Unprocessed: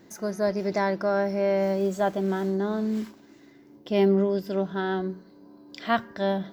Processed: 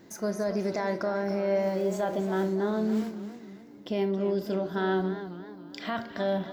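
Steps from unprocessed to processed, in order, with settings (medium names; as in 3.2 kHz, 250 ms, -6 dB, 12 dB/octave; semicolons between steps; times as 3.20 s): peak limiter -20.5 dBFS, peak gain reduction 10.5 dB; on a send at -10 dB: high-pass 220 Hz 24 dB/octave + reverberation RT60 0.45 s, pre-delay 27 ms; on the sum: modulated delay 274 ms, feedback 41%, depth 121 cents, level -12 dB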